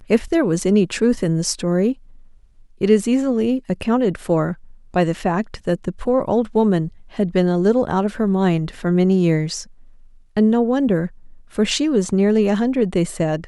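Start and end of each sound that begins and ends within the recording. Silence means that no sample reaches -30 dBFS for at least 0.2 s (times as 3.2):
2.81–4.53
4.94–6.88
7.19–9.63
10.37–11.07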